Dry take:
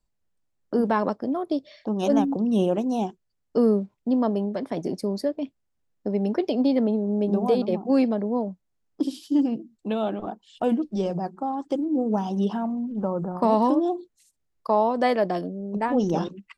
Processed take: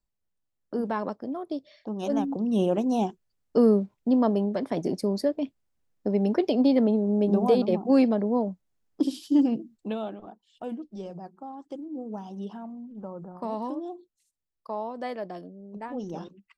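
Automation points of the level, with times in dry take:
0:02.07 −6.5 dB
0:02.92 +0.5 dB
0:09.72 +0.5 dB
0:10.23 −12 dB

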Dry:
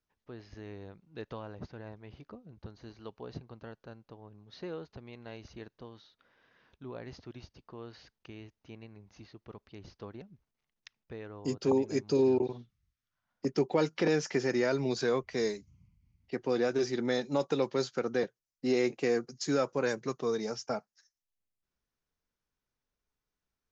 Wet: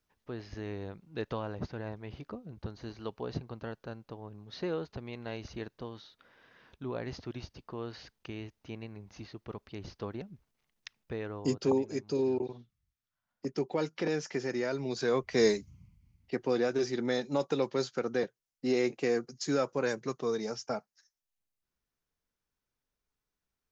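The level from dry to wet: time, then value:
0:11.32 +6 dB
0:11.94 −4 dB
0:14.87 −4 dB
0:15.53 +8 dB
0:16.68 −0.5 dB

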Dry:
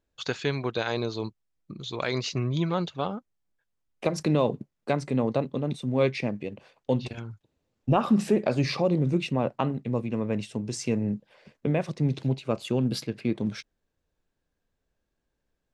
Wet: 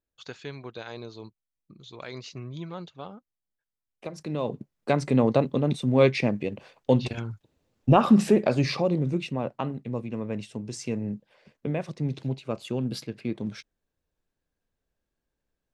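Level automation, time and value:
0:04.23 −10.5 dB
0:04.54 −2.5 dB
0:05.07 +4.5 dB
0:08.11 +4.5 dB
0:09.33 −3.5 dB

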